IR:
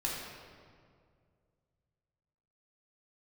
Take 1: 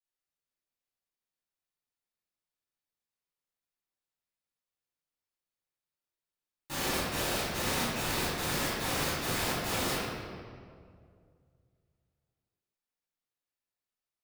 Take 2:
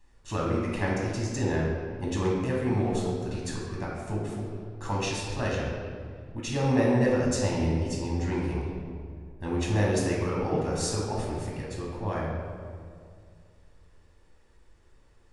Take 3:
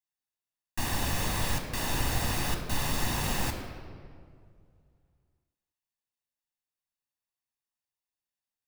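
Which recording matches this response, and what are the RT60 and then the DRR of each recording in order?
2; 2.1, 2.1, 2.2 seconds; −13.0, −4.0, 4.0 decibels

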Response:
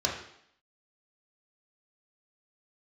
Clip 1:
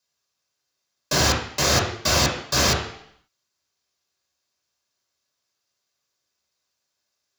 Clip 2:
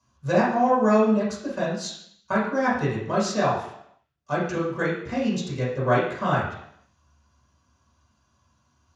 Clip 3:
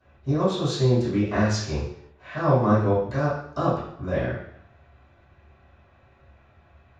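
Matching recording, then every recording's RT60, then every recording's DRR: 1; 0.70, 0.70, 0.70 seconds; −3.0, −10.0, −18.0 decibels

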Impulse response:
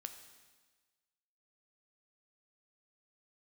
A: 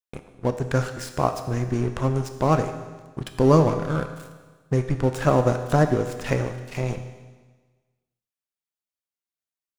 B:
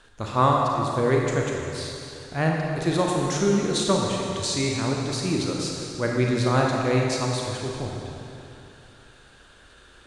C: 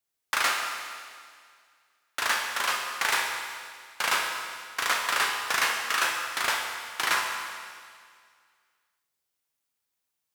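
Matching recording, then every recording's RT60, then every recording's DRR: A; 1.4, 2.8, 2.0 seconds; 6.5, −1.5, 0.5 decibels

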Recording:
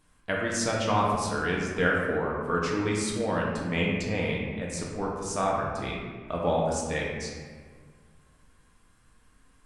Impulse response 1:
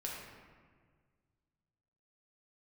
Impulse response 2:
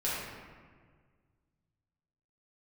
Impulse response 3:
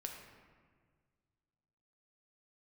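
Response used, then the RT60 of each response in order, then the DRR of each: 1; 1.7, 1.7, 1.7 seconds; −3.5, −9.0, 1.5 decibels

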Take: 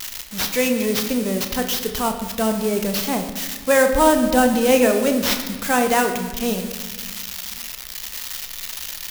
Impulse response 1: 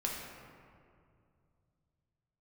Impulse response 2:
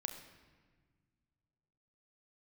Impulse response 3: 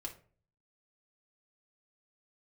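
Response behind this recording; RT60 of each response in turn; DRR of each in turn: 2; 2.3, 1.5, 0.45 seconds; −2.5, 5.5, 0.0 decibels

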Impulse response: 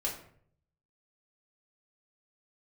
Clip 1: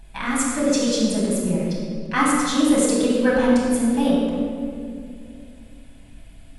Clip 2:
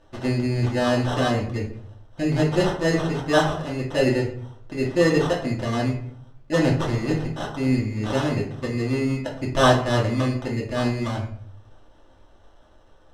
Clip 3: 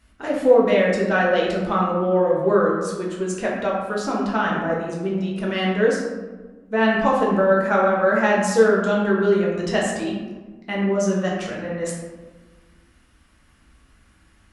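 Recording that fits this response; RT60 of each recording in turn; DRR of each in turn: 2; 2.4, 0.60, 1.3 seconds; −7.0, −4.0, −4.0 decibels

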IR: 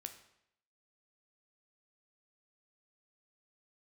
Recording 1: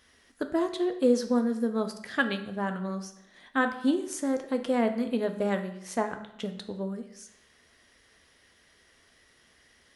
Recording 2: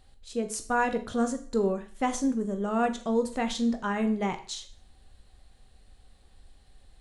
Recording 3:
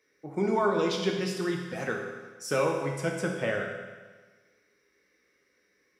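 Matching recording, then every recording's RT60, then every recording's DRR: 1; 0.75, 0.45, 1.4 seconds; 6.5, 7.0, 0.5 decibels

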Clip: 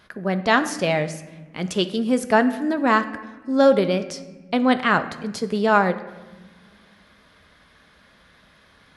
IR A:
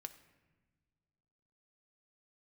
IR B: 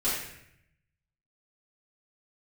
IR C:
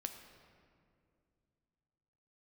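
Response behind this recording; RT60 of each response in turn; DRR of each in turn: A; non-exponential decay, 0.75 s, 2.4 s; 9.0, −12.0, 6.0 decibels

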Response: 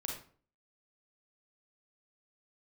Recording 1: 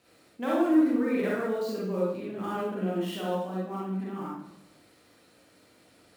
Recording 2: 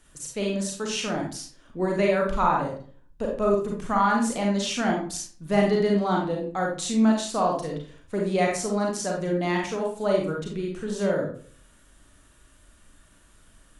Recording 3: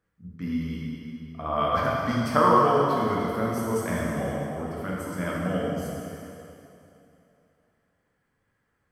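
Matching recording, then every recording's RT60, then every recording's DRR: 2; 0.80, 0.45, 2.9 seconds; −7.5, −1.0, −5.5 decibels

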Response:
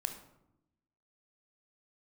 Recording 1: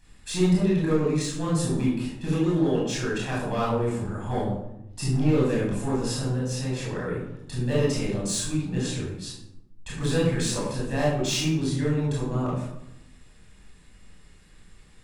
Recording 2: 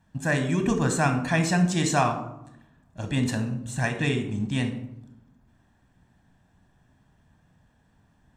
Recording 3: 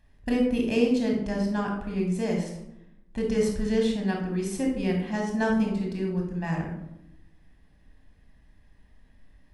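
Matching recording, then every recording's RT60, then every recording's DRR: 2; 0.85, 0.85, 0.85 seconds; −7.0, 6.0, 0.0 decibels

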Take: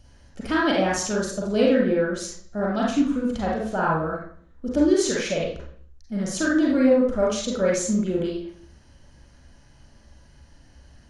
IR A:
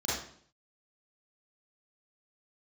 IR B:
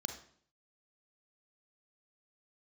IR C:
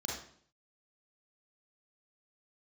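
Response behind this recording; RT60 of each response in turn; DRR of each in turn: C; 0.55, 0.55, 0.55 seconds; −10.0, 4.0, −4.5 decibels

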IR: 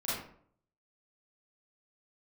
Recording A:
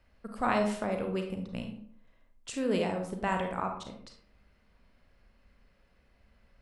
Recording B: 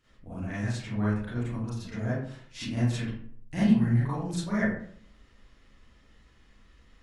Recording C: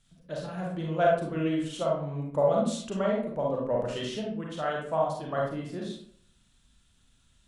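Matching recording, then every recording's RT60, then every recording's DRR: B; 0.60, 0.60, 0.60 seconds; 3.5, −11.0, −3.0 decibels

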